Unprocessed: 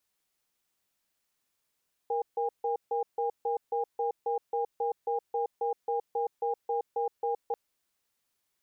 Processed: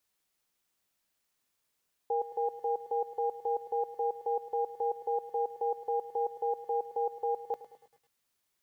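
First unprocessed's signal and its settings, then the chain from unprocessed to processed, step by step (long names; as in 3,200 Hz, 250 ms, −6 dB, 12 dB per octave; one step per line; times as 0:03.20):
tone pair in a cadence 469 Hz, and 809 Hz, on 0.12 s, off 0.15 s, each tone −29.5 dBFS 5.44 s
feedback echo at a low word length 106 ms, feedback 55%, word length 10 bits, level −14 dB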